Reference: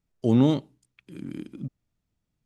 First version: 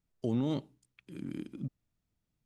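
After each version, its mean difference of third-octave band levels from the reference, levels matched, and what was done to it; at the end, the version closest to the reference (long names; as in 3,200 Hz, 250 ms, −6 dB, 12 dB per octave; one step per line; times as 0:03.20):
4.0 dB: brickwall limiter −19.5 dBFS, peak gain reduction 10.5 dB
level −3.5 dB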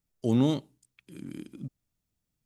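1.5 dB: high-shelf EQ 5,500 Hz +11.5 dB
level −4.5 dB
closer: second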